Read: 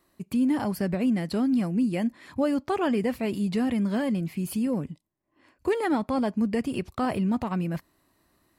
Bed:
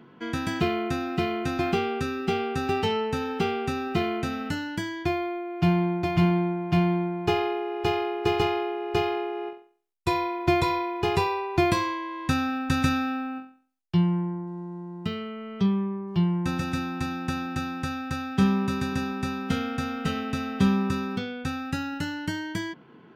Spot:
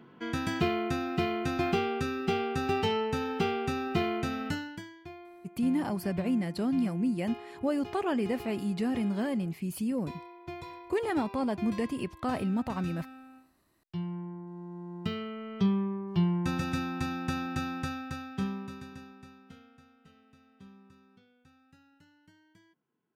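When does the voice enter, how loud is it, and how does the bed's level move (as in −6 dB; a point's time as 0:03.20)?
5.25 s, −4.5 dB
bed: 0:04.53 −3 dB
0:05.01 −19.5 dB
0:13.47 −19.5 dB
0:14.96 −3 dB
0:17.78 −3 dB
0:19.98 −31.5 dB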